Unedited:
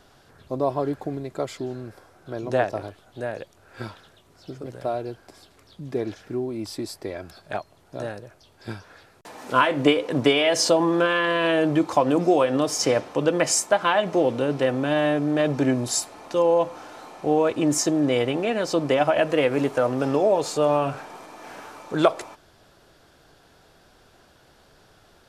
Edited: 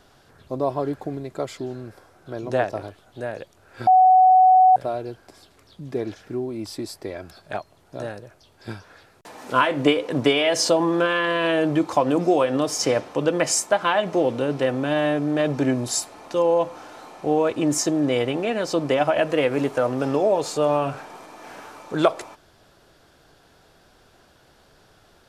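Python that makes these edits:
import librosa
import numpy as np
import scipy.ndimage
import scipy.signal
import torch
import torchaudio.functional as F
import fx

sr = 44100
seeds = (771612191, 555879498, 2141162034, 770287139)

y = fx.edit(x, sr, fx.bleep(start_s=3.87, length_s=0.89, hz=746.0, db=-10.0), tone=tone)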